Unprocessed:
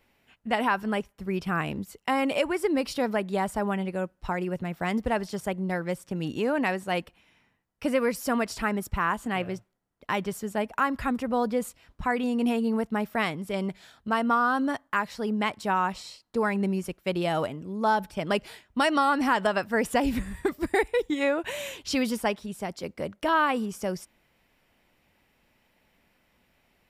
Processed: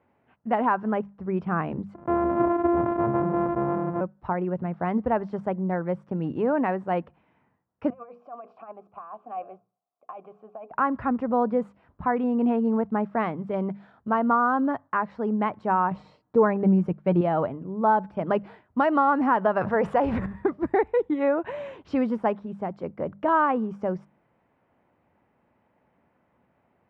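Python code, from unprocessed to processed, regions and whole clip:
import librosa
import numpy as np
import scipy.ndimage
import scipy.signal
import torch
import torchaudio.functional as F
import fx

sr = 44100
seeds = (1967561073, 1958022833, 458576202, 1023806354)

y = fx.chain(x, sr, fx.sample_sort(block=128),
    fx.lowpass(hz=1300.0, slope=12),
    fx.sustainer(db_per_s=26.0), at=(1.94, 4.01))
y = fx.chain(y, sr, fx.hum_notches(base_hz=60, count=8),
    fx.over_compress(threshold_db=-29.0, ratio=-0.5),
    fx.vowel_filter(vowel='a'), at=(7.9, 10.71))
y = fx.chain(y, sr, fx.low_shelf(hz=450.0, db=7.0),
    fx.comb(ms=6.6, depth=0.37), at=(15.91, 17.21))
y = fx.chain(y, sr, fx.law_mismatch(coded='A'),
    fx.peak_eq(hz=260.0, db=-12.5, octaves=0.43),
    fx.env_flatten(amount_pct=70), at=(19.61, 20.26))
y = scipy.signal.sosfilt(scipy.signal.cheby1(2, 1.0, [100.0, 1100.0], 'bandpass', fs=sr, output='sos'), y)
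y = fx.hum_notches(y, sr, base_hz=50, count=4)
y = y * librosa.db_to_amplitude(3.5)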